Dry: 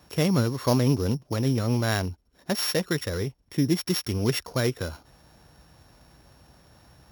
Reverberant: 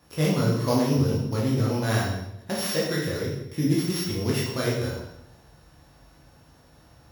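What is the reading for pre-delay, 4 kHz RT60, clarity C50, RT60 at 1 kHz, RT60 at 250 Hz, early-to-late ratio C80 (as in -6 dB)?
13 ms, 0.75 s, 2.0 dB, 0.80 s, 0.95 s, 5.5 dB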